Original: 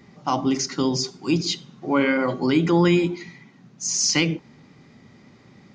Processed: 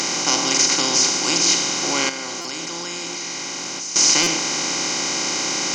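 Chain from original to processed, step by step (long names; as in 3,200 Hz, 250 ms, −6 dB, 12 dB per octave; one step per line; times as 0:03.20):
compressor on every frequency bin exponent 0.2
RIAA equalisation recording
0:02.09–0:03.96: output level in coarse steps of 22 dB
buffer that repeats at 0:02.41/0:04.23, samples 256, times 5
level −7 dB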